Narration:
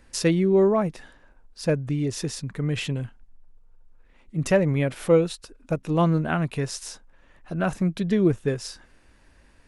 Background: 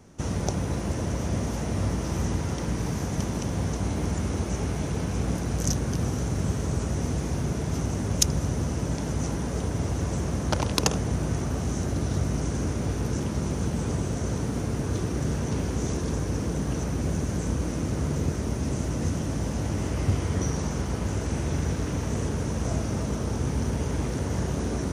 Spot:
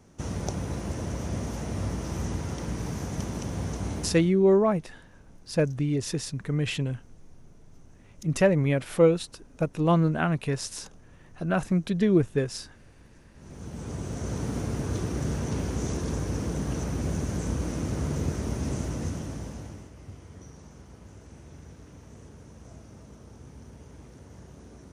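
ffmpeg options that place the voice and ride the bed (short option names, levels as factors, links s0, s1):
-filter_complex "[0:a]adelay=3900,volume=0.891[s0];[1:a]volume=12.6,afade=t=out:st=3.94:d=0.39:silence=0.0630957,afade=t=in:st=13.35:d=1.15:silence=0.0501187,afade=t=out:st=18.72:d=1.18:silence=0.125893[s1];[s0][s1]amix=inputs=2:normalize=0"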